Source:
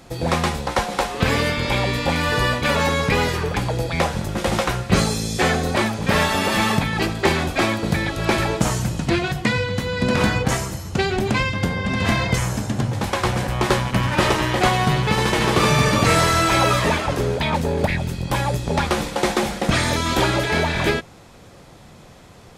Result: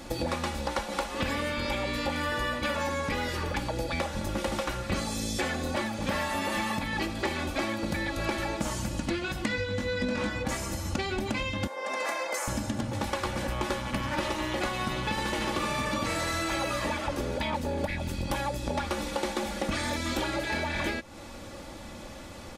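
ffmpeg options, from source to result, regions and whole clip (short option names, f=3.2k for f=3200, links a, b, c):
-filter_complex "[0:a]asettb=1/sr,asplit=3[a][b][c];[a]atrim=end=9.484[d];[b]atrim=start=9.48:end=10.3,asetpts=PTS-STARTPTS,afade=t=in:d=0.004:c=qsin,afade=t=out:st=0.816:d=0.004:c=qsin,acrossover=split=9000[e][f];[f]acompressor=threshold=-58dB:ratio=4:attack=1:release=60[g];[e][g]amix=inputs=2:normalize=0,asplit=2[h][i];[i]adelay=20,volume=-4dB[j];[h][j]amix=inputs=2:normalize=0,atrim=end_sample=36162[k];[c]atrim=start=10.296[l];[d][k]acrossfade=d=0.004:c1=hsin:c2=qsin[m];[m][l]acrossfade=d=0.004:c1=qsin:c2=hsin,asettb=1/sr,asplit=3[n][o][p];[n]atrim=end=11.674[q];[o]atrim=start=11.67:end=12.48,asetpts=PTS-STARTPTS,afade=t=in:d=0.004:c=qsin,afade=t=out:st=0.806:d=0.004:c=qsin,highpass=f=470:w=0.5412,highpass=f=470:w=1.3066,equalizer=f=3.2k:t=o:w=1.1:g=-11.5[r];[p]atrim=start=12.476[s];[q][r]acrossfade=d=0.004:c1=hsin:c2=qsin[t];[t][s]acrossfade=d=0.004:c1=qsin:c2=hsin,aecho=1:1:3.5:0.64,acompressor=threshold=-30dB:ratio=6,volume=1.5dB"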